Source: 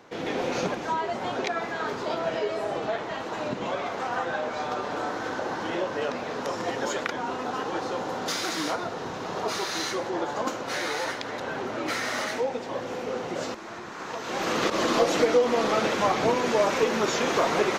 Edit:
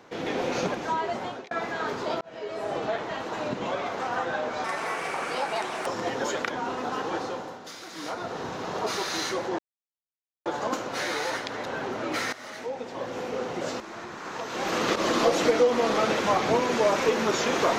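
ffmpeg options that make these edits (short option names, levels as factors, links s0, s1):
-filter_complex "[0:a]asplit=9[s0][s1][s2][s3][s4][s5][s6][s7][s8];[s0]atrim=end=1.51,asetpts=PTS-STARTPTS,afade=t=out:st=1.16:d=0.35[s9];[s1]atrim=start=1.51:end=2.21,asetpts=PTS-STARTPTS,afade=t=in:d=0.004:c=hsin,afade=t=out:st=0.696:d=0.004:c=hsin[s10];[s2]atrim=start=2.21:end=4.644,asetpts=PTS-STARTPTS,afade=t=in:d=0.54[s11];[s3]atrim=start=4.64:end=6.48,asetpts=PTS-STARTPTS,asetrate=66150,aresample=44100[s12];[s4]atrim=start=6.476:end=8.22,asetpts=PTS-STARTPTS,afade=t=out:st=1.304:d=0.44:silence=0.237137[s13];[s5]atrim=start=8.22:end=8.53,asetpts=PTS-STARTPTS,volume=0.237[s14];[s6]atrim=start=8.53:end=10.2,asetpts=PTS-STARTPTS,afade=t=in:d=0.44:silence=0.237137,afade=t=out:st=1.666:d=0.004:c=hsin,apad=pad_dur=0.87[s15];[s7]atrim=start=10.2:end=12.07,asetpts=PTS-STARTPTS,afade=t=in:d=0.004:c=hsin,afade=t=out:st=1.866:d=0.004:c=hsin:silence=0.141254[s16];[s8]atrim=start=12.07,asetpts=PTS-STARTPTS,afade=t=in:d=0.87:silence=0.141254[s17];[s9][s10][s11]concat=n=3:v=0:a=1[s18];[s18][s12]acrossfade=d=0.004:c1=hsin:c2=hsin[s19];[s13][s14][s15][s16][s17]concat=n=5:v=0:a=1[s20];[s19][s20]acrossfade=d=0.004:c1=hsin:c2=hsin"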